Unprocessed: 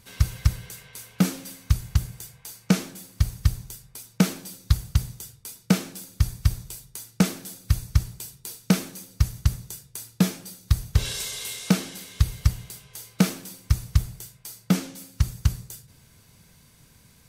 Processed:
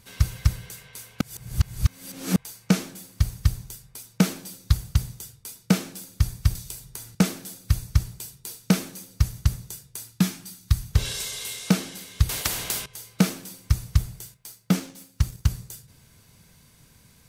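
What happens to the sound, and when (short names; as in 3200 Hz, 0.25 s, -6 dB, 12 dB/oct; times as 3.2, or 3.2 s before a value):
1.21–2.36 reverse
6.55–7.15 three-band squash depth 100%
10.12–10.91 bell 520 Hz -13 dB 0.73 oct
12.29–12.86 spectral compressor 4:1
14.34–15.51 G.711 law mismatch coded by A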